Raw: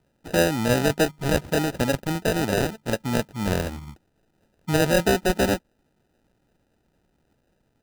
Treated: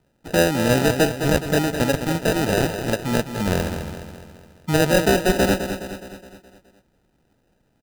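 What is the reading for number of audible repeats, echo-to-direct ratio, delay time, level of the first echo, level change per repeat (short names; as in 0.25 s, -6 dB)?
5, -7.5 dB, 0.209 s, -9.0 dB, -5.5 dB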